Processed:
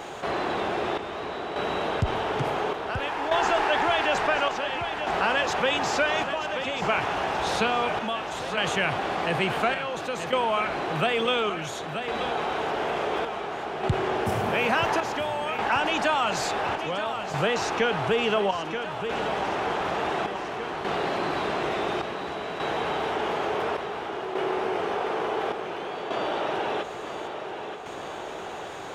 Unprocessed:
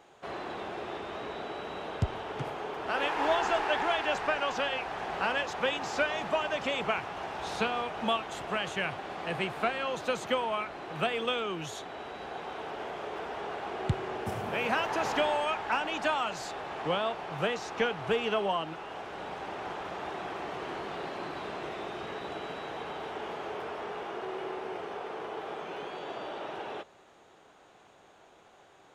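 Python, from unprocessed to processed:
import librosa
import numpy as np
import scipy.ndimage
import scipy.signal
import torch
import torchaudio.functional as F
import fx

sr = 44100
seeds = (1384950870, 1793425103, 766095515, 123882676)

y = fx.step_gate(x, sr, bpm=77, pattern='xxxxx...x', floor_db=-12.0, edge_ms=4.5)
y = fx.echo_feedback(y, sr, ms=930, feedback_pct=58, wet_db=-15.0)
y = fx.env_flatten(y, sr, amount_pct=50)
y = F.gain(torch.from_numpy(y), 3.0).numpy()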